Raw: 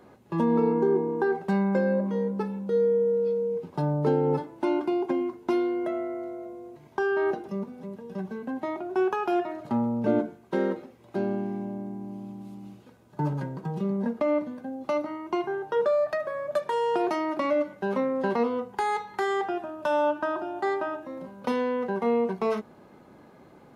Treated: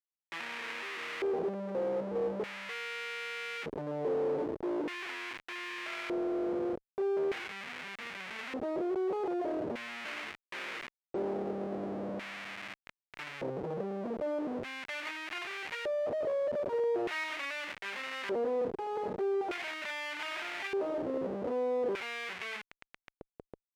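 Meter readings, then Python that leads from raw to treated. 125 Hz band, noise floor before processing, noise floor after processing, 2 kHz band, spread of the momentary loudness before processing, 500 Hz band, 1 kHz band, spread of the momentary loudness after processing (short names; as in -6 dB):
-15.5 dB, -53 dBFS, under -85 dBFS, -0.5 dB, 12 LU, -7.5 dB, -10.5 dB, 9 LU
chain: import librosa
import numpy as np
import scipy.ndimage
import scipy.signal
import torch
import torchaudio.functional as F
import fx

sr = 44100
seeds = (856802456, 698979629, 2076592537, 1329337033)

y = fx.diode_clip(x, sr, knee_db=-22.0)
y = fx.peak_eq(y, sr, hz=7800.0, db=-2.0, octaves=2.5)
y = fx.schmitt(y, sr, flips_db=-43.0)
y = fx.filter_lfo_bandpass(y, sr, shape='square', hz=0.41, low_hz=460.0, high_hz=2200.0, q=2.2)
y = y * 10.0 ** (2.0 / 20.0)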